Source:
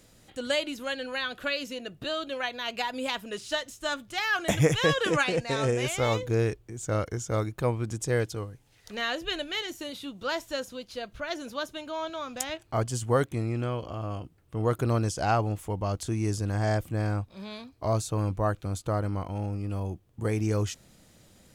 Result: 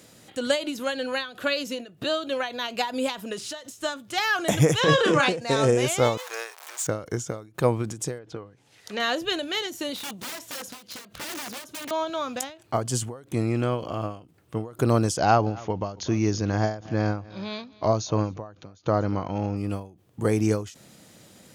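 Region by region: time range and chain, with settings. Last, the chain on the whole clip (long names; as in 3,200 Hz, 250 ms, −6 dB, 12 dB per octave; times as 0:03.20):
0:04.80–0:05.29: transient designer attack −10 dB, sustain +6 dB + high-frequency loss of the air 55 metres + double-tracking delay 33 ms −6.5 dB
0:06.17–0:06.87: converter with a step at zero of −35 dBFS + high-pass filter 770 Hz 24 dB per octave
0:08.18–0:09.00: treble cut that deepens with the level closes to 2,400 Hz, closed at −28.5 dBFS + low-shelf EQ 170 Hz −5.5 dB
0:09.96–0:11.91: downward compressor, threshold −34 dBFS + wrap-around overflow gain 36.5 dB
0:15.17–0:19.57: linear-phase brick-wall low-pass 6,900 Hz + single-tap delay 242 ms −21.5 dB
whole clip: high-pass filter 130 Hz 12 dB per octave; dynamic equaliser 2,200 Hz, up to −5 dB, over −42 dBFS, Q 1.1; every ending faded ahead of time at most 130 dB per second; level +7 dB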